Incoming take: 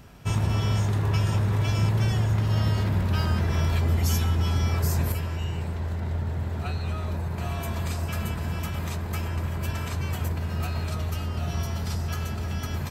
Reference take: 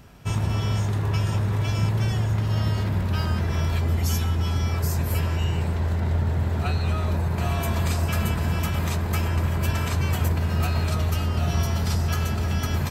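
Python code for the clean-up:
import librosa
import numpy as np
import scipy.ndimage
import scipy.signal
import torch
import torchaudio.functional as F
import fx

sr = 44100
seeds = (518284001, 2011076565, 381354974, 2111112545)

y = fx.fix_declip(x, sr, threshold_db=-15.5)
y = fx.gain(y, sr, db=fx.steps((0.0, 0.0), (5.12, 5.5)))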